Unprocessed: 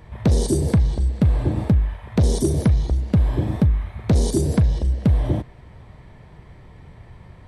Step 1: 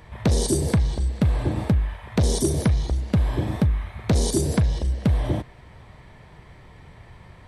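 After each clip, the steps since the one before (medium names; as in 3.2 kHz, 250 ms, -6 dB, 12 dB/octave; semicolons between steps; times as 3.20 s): tilt shelf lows -3.5 dB, about 670 Hz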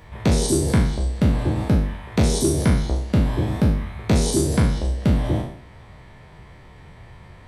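spectral sustain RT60 0.61 s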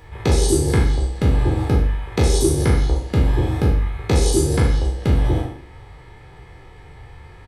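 comb 2.4 ms, depth 57%; on a send at -6.5 dB: reverberation, pre-delay 41 ms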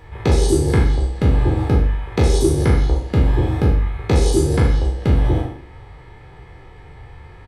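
treble shelf 4.6 kHz -7.5 dB; trim +1.5 dB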